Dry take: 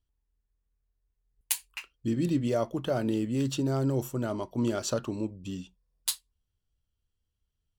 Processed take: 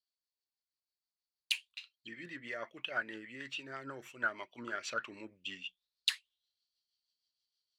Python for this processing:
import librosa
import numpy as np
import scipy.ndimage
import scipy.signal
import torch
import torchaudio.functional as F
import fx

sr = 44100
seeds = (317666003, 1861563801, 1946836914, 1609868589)

y = fx.rotary(x, sr, hz=6.3)
y = fx.rider(y, sr, range_db=4, speed_s=0.5)
y = fx.auto_wah(y, sr, base_hz=750.0, top_hz=4500.0, q=9.0, full_db=-21.5, direction='down')
y = y * librosa.db_to_amplitude(16.5)